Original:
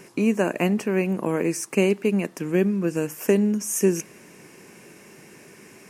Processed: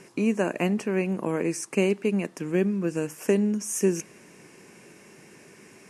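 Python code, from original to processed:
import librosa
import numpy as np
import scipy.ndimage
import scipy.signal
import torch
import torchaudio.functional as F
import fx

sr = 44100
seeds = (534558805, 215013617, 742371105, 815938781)

y = scipy.signal.sosfilt(scipy.signal.butter(4, 11000.0, 'lowpass', fs=sr, output='sos'), x)
y = y * 10.0 ** (-3.0 / 20.0)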